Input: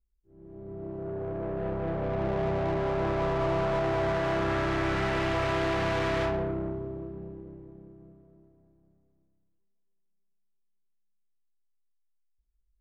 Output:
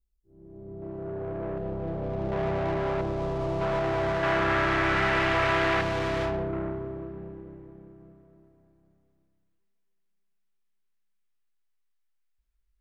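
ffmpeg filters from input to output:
-af "asetnsamples=n=441:p=0,asendcmd='0.82 equalizer g 2;1.58 equalizer g -8;2.32 equalizer g 2.5;3.01 equalizer g -9;3.61 equalizer g 1.5;4.23 equalizer g 8;5.81 equalizer g -1;6.53 equalizer g 8.5',equalizer=f=1800:t=o:w=2.1:g=-7.5"

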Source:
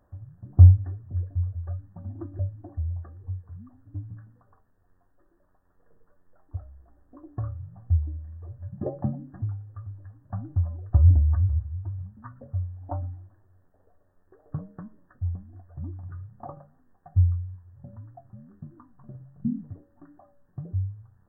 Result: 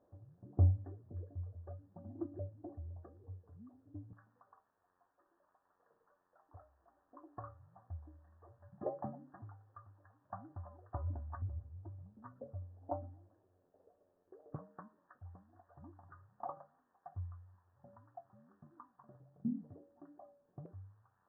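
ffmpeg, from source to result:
-af "asetnsamples=n=441:p=0,asendcmd='4.13 bandpass f 1000;11.42 bandpass f 480;14.56 bandpass f 1000;19.2 bandpass f 540;20.66 bandpass f 1100',bandpass=f=450:t=q:w=1.4:csg=0"

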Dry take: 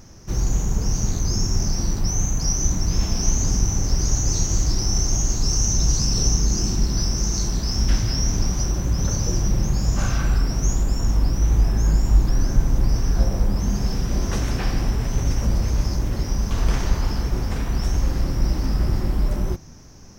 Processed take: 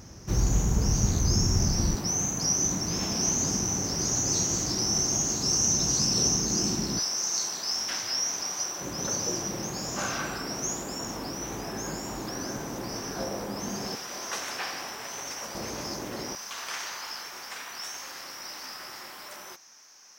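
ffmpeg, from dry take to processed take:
-af "asetnsamples=n=441:p=0,asendcmd='1.95 highpass f 200;6.99 highpass f 720;8.81 highpass f 330;13.95 highpass f 770;15.55 highpass f 340;16.35 highpass f 1200',highpass=51"

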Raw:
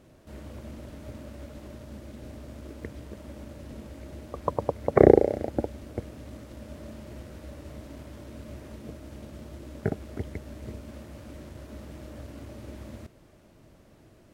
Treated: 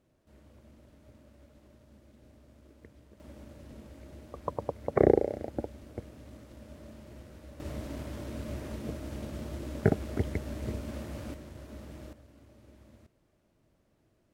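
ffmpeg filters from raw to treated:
-af "asetnsamples=n=441:p=0,asendcmd='3.2 volume volume -6.5dB;7.6 volume volume 4dB;11.34 volume volume -3dB;12.13 volume volume -14.5dB',volume=0.178"

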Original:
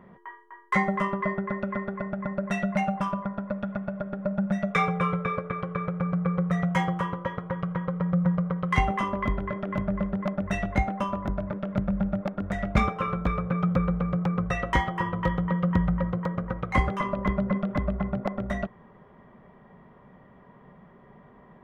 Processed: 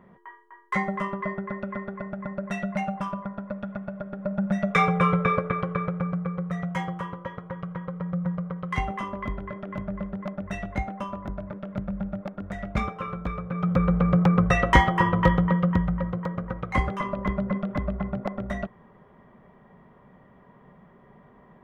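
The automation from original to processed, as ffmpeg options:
-af "volume=7.5,afade=t=in:st=4.13:d=1.18:silence=0.375837,afade=t=out:st=5.31:d=1:silence=0.298538,afade=t=in:st=13.51:d=0.64:silence=0.266073,afade=t=out:st=15.23:d=0.61:silence=0.398107"

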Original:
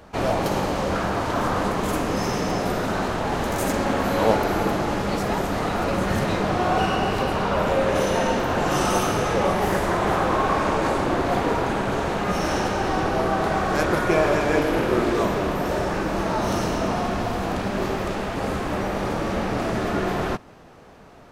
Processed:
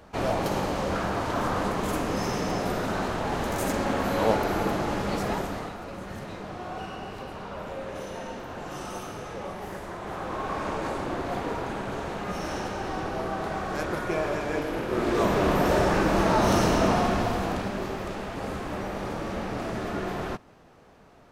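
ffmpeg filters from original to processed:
-af "volume=4.47,afade=t=out:st=5.29:d=0.48:silence=0.281838,afade=t=in:st=10.02:d=0.66:silence=0.473151,afade=t=in:st=14.88:d=0.67:silence=0.298538,afade=t=out:st=16.85:d=0.98:silence=0.354813"

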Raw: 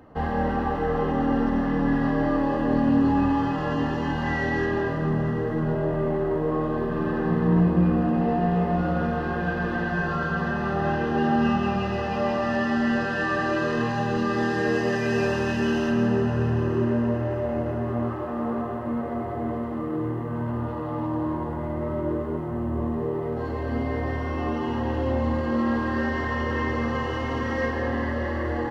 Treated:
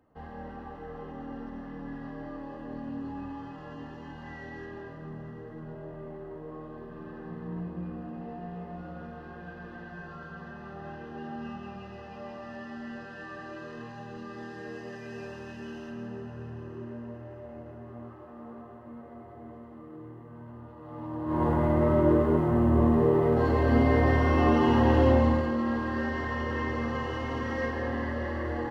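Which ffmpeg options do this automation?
-af "volume=1.78,afade=t=in:st=20.78:d=0.48:silence=0.316228,afade=t=in:st=21.26:d=0.2:silence=0.251189,afade=t=out:st=25.03:d=0.52:silence=0.316228"

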